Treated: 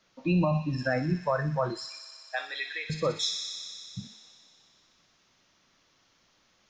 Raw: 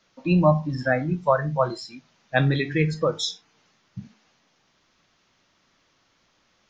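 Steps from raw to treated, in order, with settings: limiter -14.5 dBFS, peak gain reduction 9.5 dB; 1.88–2.9 HPF 710 Hz 24 dB/oct; thin delay 61 ms, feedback 85%, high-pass 3600 Hz, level -4.5 dB; gain -2.5 dB

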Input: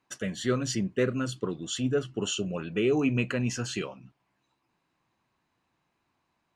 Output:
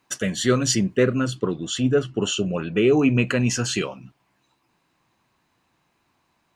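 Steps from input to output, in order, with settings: high shelf 4200 Hz +6 dB, from 0.97 s -4 dB, from 3.27 s +4 dB; gain +7.5 dB

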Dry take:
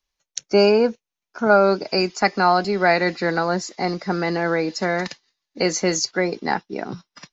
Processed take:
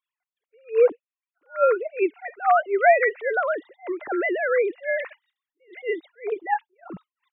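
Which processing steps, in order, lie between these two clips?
sine-wave speech; attack slew limiter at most 270 dB/s

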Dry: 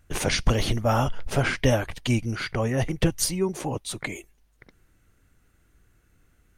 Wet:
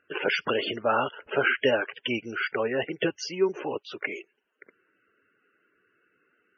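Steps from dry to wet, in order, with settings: speaker cabinet 360–5200 Hz, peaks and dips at 410 Hz +7 dB, 730 Hz -4 dB, 1500 Hz +6 dB, 2800 Hz +6 dB, 4000 Hz -9 dB; loudest bins only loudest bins 64

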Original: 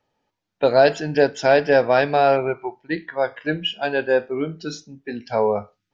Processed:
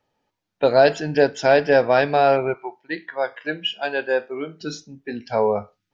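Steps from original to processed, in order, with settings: 2.54–4.61 HPF 490 Hz 6 dB/oct

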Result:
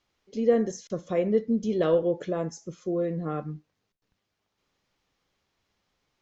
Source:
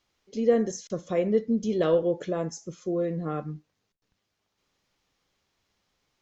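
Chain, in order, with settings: high shelf 5300 Hz -6 dB

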